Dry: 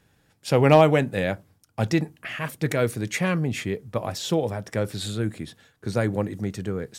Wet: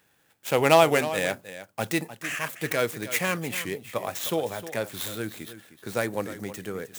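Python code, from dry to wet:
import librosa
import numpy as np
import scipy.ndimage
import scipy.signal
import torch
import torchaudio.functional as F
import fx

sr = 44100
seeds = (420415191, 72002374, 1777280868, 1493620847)

p1 = scipy.ndimage.median_filter(x, 9, mode='constant')
p2 = fx.riaa(p1, sr, side='recording')
p3 = p2 + fx.echo_single(p2, sr, ms=309, db=-13.5, dry=0)
y = fx.record_warp(p3, sr, rpm=45.0, depth_cents=100.0)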